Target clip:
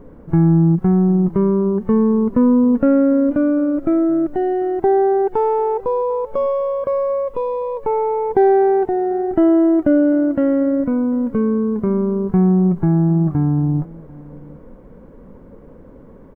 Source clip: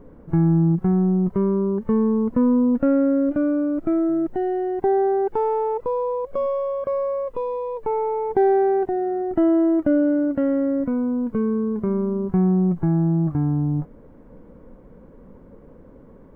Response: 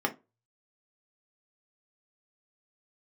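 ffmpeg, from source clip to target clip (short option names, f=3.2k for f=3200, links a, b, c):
-af "aecho=1:1:745:0.0794,volume=4.5dB"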